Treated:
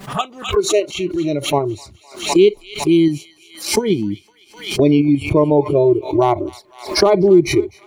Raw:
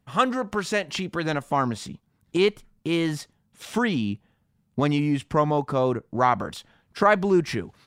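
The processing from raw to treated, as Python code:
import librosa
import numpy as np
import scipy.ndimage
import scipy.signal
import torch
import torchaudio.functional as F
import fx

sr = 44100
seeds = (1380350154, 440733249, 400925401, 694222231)

p1 = fx.bin_compress(x, sr, power=0.6)
p2 = fx.noise_reduce_blind(p1, sr, reduce_db=24)
p3 = fx.dynamic_eq(p2, sr, hz=380.0, q=0.81, threshold_db=-33.0, ratio=4.0, max_db=8)
p4 = fx.level_steps(p3, sr, step_db=16)
p5 = p3 + (p4 * 10.0 ** (-1.0 / 20.0))
p6 = fx.quant_dither(p5, sr, seeds[0], bits=12, dither='none')
p7 = fx.env_flanger(p6, sr, rest_ms=5.2, full_db=-17.0)
p8 = p7 + fx.echo_wet_highpass(p7, sr, ms=255, feedback_pct=58, hz=1700.0, wet_db=-13.0, dry=0)
p9 = fx.pre_swell(p8, sr, db_per_s=120.0)
y = p9 * 10.0 ** (-1.5 / 20.0)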